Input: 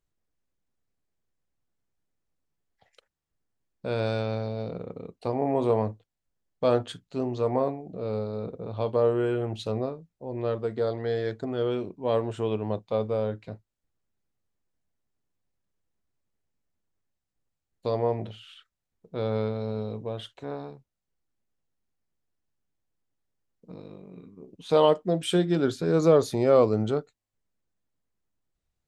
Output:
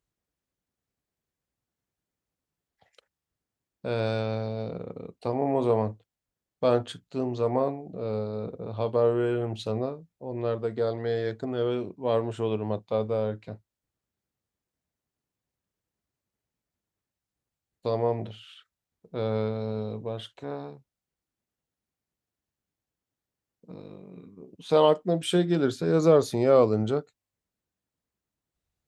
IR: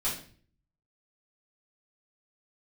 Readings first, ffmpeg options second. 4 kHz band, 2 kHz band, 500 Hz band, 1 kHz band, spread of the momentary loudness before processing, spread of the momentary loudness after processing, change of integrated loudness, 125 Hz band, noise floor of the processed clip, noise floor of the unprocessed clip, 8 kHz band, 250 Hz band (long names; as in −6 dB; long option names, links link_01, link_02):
0.0 dB, 0.0 dB, 0.0 dB, 0.0 dB, 18 LU, 18 LU, 0.0 dB, 0.0 dB, below −85 dBFS, −85 dBFS, can't be measured, 0.0 dB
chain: -af "highpass=46"